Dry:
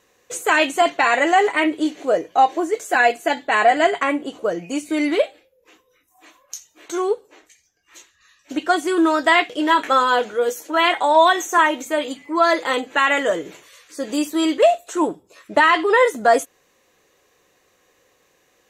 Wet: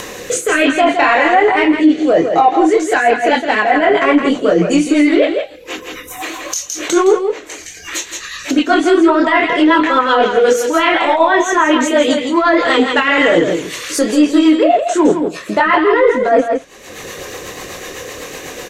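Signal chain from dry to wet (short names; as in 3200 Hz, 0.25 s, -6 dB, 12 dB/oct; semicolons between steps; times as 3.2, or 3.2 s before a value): in parallel at -7 dB: overloaded stage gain 23.5 dB; on the sum: chorus voices 2, 1.3 Hz, delay 26 ms, depth 3 ms; treble ducked by the level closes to 2100 Hz, closed at -13 dBFS; reverse; compressor 10:1, threshold -22 dBFS, peak gain reduction 12.5 dB; reverse; rotary speaker horn 0.7 Hz, later 8 Hz, at 2.26; echo 0.164 s -7.5 dB; upward compressor, threshold -31 dBFS; maximiser +18.5 dB; gain -1 dB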